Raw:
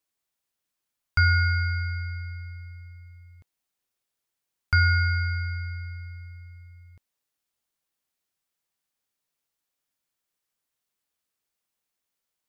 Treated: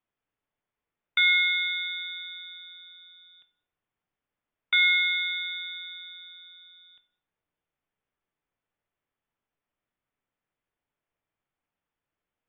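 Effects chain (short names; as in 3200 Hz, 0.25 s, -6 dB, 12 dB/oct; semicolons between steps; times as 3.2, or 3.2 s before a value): inverted band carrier 3600 Hz; air absorption 450 m; shoebox room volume 170 m³, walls mixed, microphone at 0.36 m; gain +4 dB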